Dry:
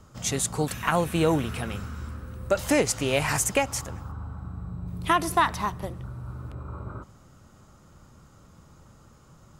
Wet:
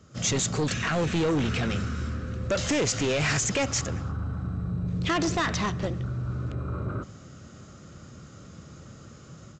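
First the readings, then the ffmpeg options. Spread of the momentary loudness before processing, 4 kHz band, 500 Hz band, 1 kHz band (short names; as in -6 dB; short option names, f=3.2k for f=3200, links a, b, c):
15 LU, +2.5 dB, -2.0 dB, -6.0 dB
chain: -af "highpass=83,equalizer=f=920:w=2.7:g=-13,alimiter=limit=-19dB:level=0:latency=1:release=23,dynaudnorm=f=100:g=3:m=9dB,aresample=16000,asoftclip=type=tanh:threshold=-21dB,aresample=44100"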